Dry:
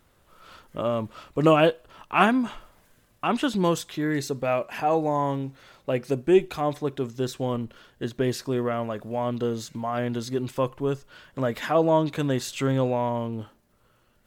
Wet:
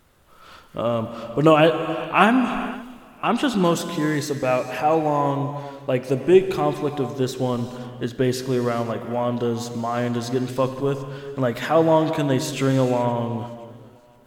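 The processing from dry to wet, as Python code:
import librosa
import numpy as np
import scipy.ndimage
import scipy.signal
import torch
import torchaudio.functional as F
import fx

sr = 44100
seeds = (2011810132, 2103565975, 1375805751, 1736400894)

y = fx.rev_gated(x, sr, seeds[0], gate_ms=470, shape='flat', drr_db=8.5)
y = fx.echo_warbled(y, sr, ms=518, feedback_pct=35, rate_hz=2.8, cents=50, wet_db=-22.5)
y = y * 10.0 ** (3.5 / 20.0)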